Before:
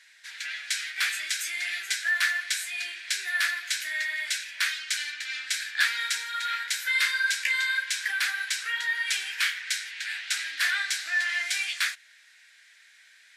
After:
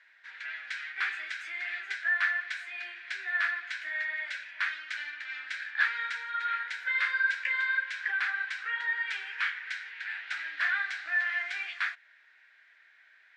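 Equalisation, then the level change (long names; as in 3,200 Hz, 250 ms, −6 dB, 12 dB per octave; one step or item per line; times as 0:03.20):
low-pass filter 1,400 Hz 12 dB per octave
low-shelf EQ 450 Hz −7.5 dB
+4.0 dB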